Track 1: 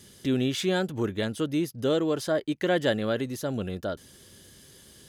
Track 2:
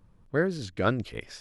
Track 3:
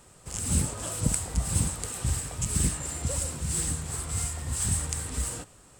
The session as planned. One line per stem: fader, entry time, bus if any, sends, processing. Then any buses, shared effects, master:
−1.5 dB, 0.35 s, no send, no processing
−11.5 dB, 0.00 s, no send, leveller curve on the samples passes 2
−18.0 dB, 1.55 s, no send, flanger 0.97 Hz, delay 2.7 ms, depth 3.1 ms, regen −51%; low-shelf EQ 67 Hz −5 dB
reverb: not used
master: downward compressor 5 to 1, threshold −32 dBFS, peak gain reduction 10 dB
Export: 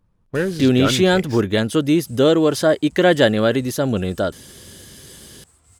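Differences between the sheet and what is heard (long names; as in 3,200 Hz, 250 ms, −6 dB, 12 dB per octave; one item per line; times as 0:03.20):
stem 1 −1.5 dB → +10.5 dB
stem 2 −11.5 dB → −1.0 dB
master: missing downward compressor 5 to 1, threshold −32 dBFS, peak gain reduction 10 dB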